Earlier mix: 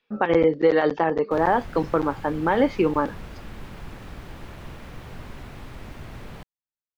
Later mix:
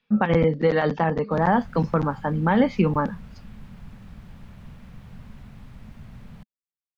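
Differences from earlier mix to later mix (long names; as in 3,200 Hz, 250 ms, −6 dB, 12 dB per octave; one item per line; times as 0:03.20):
background −10.5 dB
master: add low shelf with overshoot 260 Hz +6.5 dB, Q 3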